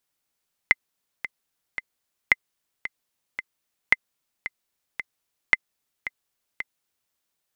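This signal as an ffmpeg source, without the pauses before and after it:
-f lavfi -i "aevalsrc='pow(10,(-2-14*gte(mod(t,3*60/112),60/112))/20)*sin(2*PI*2060*mod(t,60/112))*exp(-6.91*mod(t,60/112)/0.03)':d=6.42:s=44100"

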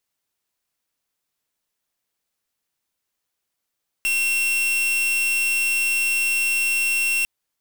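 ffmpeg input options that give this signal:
-f lavfi -i "aevalsrc='0.0891*(2*lt(mod(2720*t,1),0.44)-1)':d=3.2:s=44100"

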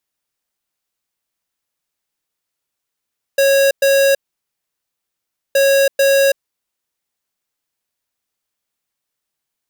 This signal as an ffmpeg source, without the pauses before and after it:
-f lavfi -i "aevalsrc='0.251*(2*lt(mod(550*t,1),0.5)-1)*clip(min(mod(mod(t,2.17),0.44),0.33-mod(mod(t,2.17),0.44))/0.005,0,1)*lt(mod(t,2.17),0.88)':d=4.34:s=44100"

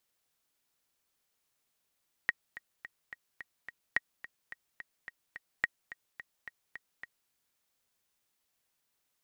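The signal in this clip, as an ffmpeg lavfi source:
-f lavfi -i "aevalsrc='pow(10,(-13.5-16.5*gte(mod(t,6*60/215),60/215))/20)*sin(2*PI*1890*mod(t,60/215))*exp(-6.91*mod(t,60/215)/0.03)':d=5.02:s=44100"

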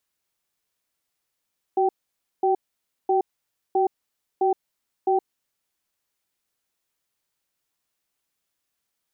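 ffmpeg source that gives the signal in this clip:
-f lavfi -i "aevalsrc='0.1*(sin(2*PI*376*t)+sin(2*PI*774*t))*clip(min(mod(t,0.66),0.12-mod(t,0.66))/0.005,0,1)':d=3.85:s=44100"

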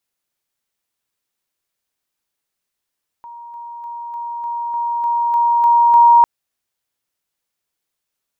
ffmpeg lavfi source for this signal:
-f lavfi -i "aevalsrc='pow(10,(-32.5+3*floor(t/0.3))/20)*sin(2*PI*943*t)':d=3:s=44100"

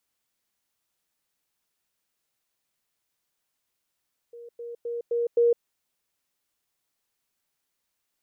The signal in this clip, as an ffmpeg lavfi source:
-f lavfi -i "aevalsrc='pow(10,(-40.5+6*floor(t/0.26))/20)*sin(2*PI*472*t)*clip(min(mod(t,0.26),0.16-mod(t,0.26))/0.005,0,1)':d=1.3:s=44100"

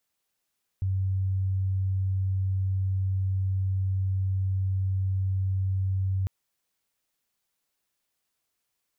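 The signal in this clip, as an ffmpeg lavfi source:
-f lavfi -i "sine=f=95.3:d=5.45:r=44100,volume=-5.44dB"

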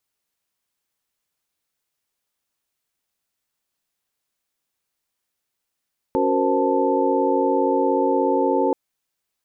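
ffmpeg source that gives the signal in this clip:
-f lavfi -i "aevalsrc='0.0708*(sin(2*PI*277.18*t)+sin(2*PI*369.99*t)+sin(2*PI*466.16*t)+sin(2*PI*523.25*t)+sin(2*PI*880*t))':d=2.58:s=44100"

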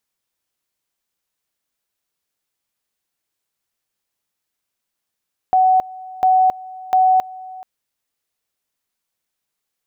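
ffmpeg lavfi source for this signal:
-f lavfi -i "aevalsrc='pow(10,(-10-21*gte(mod(t,0.7),0.27))/20)*sin(2*PI*748*t)':d=2.1:s=44100"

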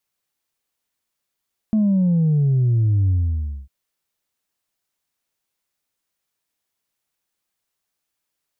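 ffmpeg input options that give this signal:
-f lavfi -i "aevalsrc='0.188*clip((1.95-t)/0.59,0,1)*tanh(1.12*sin(2*PI*220*1.95/log(65/220)*(exp(log(65/220)*t/1.95)-1)))/tanh(1.12)':d=1.95:s=44100"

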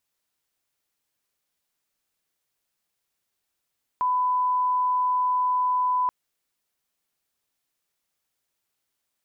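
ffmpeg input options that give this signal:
-f lavfi -i "sine=f=1000:d=2.08:r=44100,volume=-1.94dB"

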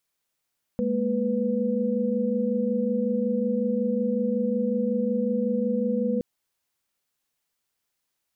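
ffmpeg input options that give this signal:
-f lavfi -i "aevalsrc='0.0473*(sin(2*PI*207.65*t)+sin(2*PI*233.08*t)+sin(2*PI*493.88*t))':d=5.42:s=44100"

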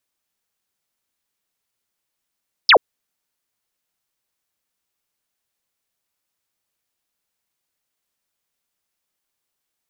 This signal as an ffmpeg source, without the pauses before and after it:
-f lavfi -i "aevalsrc='0.473*clip(t/0.002,0,1)*clip((0.08-t)/0.002,0,1)*sin(2*PI*5500*0.08/log(380/5500)*(exp(log(380/5500)*t/0.08)-1))':d=0.08:s=44100"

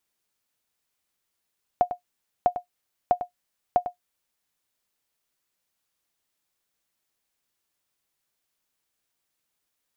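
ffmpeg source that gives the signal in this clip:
-f lavfi -i "aevalsrc='0.316*(sin(2*PI*715*mod(t,0.65))*exp(-6.91*mod(t,0.65)/0.11)+0.299*sin(2*PI*715*max(mod(t,0.65)-0.1,0))*exp(-6.91*max(mod(t,0.65)-0.1,0)/0.11))':d=2.6:s=44100"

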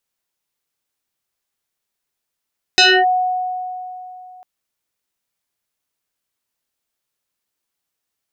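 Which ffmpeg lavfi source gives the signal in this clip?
-f lavfi -i "aevalsrc='0.473*pow(10,-3*t/3.07)*sin(2*PI*735*t+4.7*clip(1-t/0.27,0,1)*sin(2*PI*1.51*735*t))':d=1.65:s=44100"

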